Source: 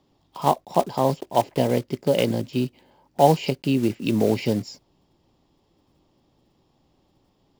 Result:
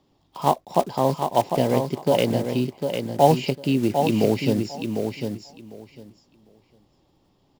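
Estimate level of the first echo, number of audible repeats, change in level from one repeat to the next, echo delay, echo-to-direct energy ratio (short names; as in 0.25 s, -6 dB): -6.0 dB, 2, -15.5 dB, 0.751 s, -6.0 dB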